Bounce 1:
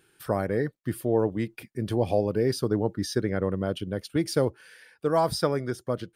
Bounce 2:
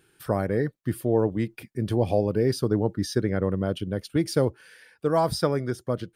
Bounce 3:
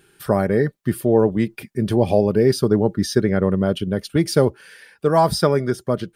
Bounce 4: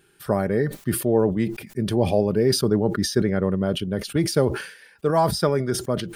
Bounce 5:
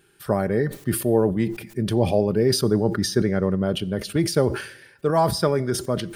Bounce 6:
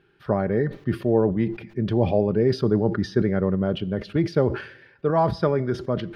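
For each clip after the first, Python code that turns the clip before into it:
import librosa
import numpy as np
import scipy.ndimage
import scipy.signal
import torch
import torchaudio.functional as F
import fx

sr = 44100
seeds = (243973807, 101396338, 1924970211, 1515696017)

y1 = fx.low_shelf(x, sr, hz=270.0, db=4.0)
y2 = y1 + 0.31 * np.pad(y1, (int(5.0 * sr / 1000.0), 0))[:len(y1)]
y2 = y2 * librosa.db_to_amplitude(6.5)
y3 = fx.sustainer(y2, sr, db_per_s=96.0)
y3 = y3 * librosa.db_to_amplitude(-4.0)
y4 = fx.rev_fdn(y3, sr, rt60_s=1.0, lf_ratio=1.0, hf_ratio=0.9, size_ms=52.0, drr_db=19.5)
y5 = fx.air_absorb(y4, sr, metres=280.0)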